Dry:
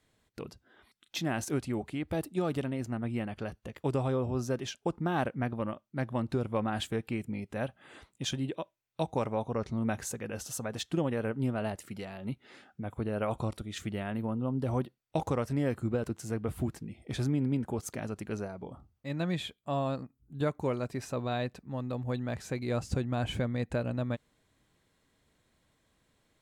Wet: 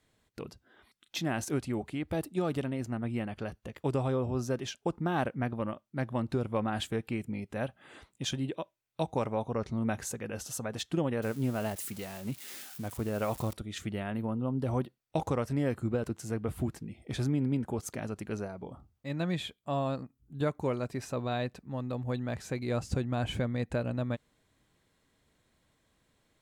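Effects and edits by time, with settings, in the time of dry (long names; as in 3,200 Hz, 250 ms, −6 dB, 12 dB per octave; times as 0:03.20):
0:11.22–0:13.53: spike at every zero crossing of −35 dBFS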